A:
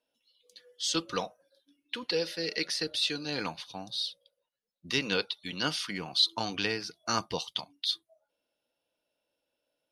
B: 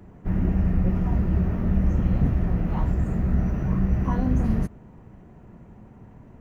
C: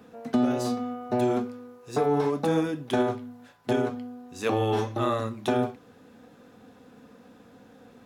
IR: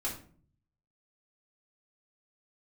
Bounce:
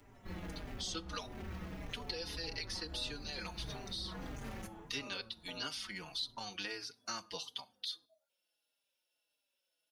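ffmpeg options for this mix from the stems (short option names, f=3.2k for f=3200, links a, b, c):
-filter_complex "[0:a]volume=-3dB,asplit=3[a][b][c];[b]volume=-20.5dB[d];[1:a]asoftclip=type=hard:threshold=-26.5dB,volume=-4.5dB,asplit=2[e][f];[f]volume=-11.5dB[g];[2:a]lowpass=1.2k,volume=-17.5dB,asplit=2[h][i];[i]volume=-22dB[j];[c]apad=whole_len=282388[k];[e][k]sidechaincompress=threshold=-45dB:ratio=8:attack=16:release=151[l];[3:a]atrim=start_sample=2205[m];[d][g][j]amix=inputs=3:normalize=0[n];[n][m]afir=irnorm=-1:irlink=0[o];[a][l][h][o]amix=inputs=4:normalize=0,tiltshelf=f=1.2k:g=-8.5,acrossover=split=1500|5800[p][q][r];[p]acompressor=threshold=-39dB:ratio=4[s];[q]acompressor=threshold=-42dB:ratio=4[t];[r]acompressor=threshold=-49dB:ratio=4[u];[s][t][u]amix=inputs=3:normalize=0,asplit=2[v][w];[w]adelay=4.5,afreqshift=-1.6[x];[v][x]amix=inputs=2:normalize=1"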